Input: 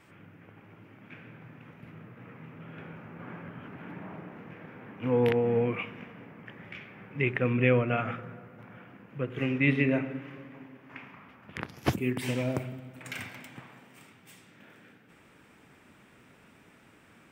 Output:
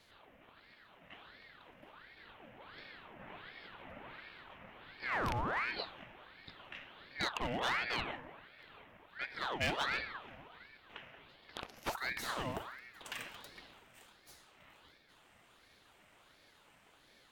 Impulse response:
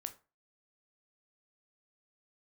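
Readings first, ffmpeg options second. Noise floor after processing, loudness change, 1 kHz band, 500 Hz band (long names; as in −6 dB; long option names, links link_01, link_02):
−66 dBFS, −10.0 dB, −0.5 dB, −15.0 dB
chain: -af "asoftclip=type=hard:threshold=-22.5dB,tiltshelf=frequency=970:gain=-3.5,aeval=exprs='val(0)*sin(2*PI*1200*n/s+1200*0.7/1.4*sin(2*PI*1.4*n/s))':channel_layout=same,volume=-4dB"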